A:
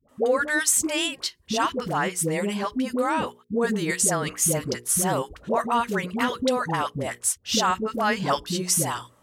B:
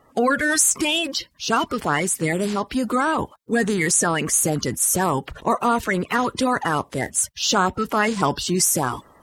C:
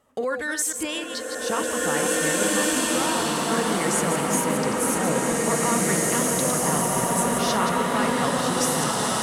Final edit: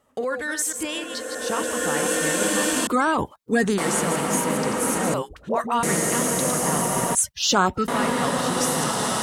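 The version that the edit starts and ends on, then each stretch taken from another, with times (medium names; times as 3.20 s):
C
2.87–3.78 s: from B
5.14–5.83 s: from A
7.15–7.88 s: from B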